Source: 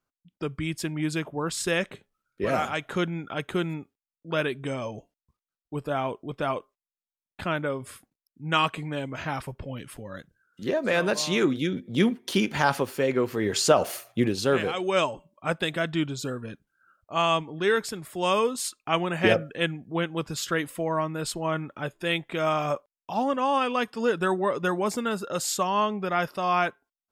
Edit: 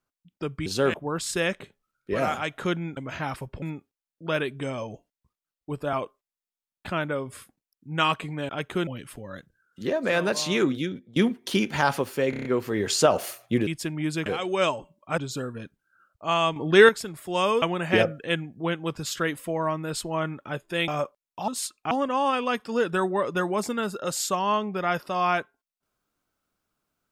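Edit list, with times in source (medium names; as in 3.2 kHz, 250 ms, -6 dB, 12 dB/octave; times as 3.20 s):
0.66–1.25 s: swap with 14.33–14.61 s
3.28–3.66 s: swap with 9.03–9.68 s
5.97–6.47 s: delete
11.56–11.97 s: fade out, to -22.5 dB
13.11 s: stutter 0.03 s, 6 plays
15.53–16.06 s: delete
17.44–17.77 s: gain +9 dB
18.50–18.93 s: move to 23.19 s
22.19–22.59 s: delete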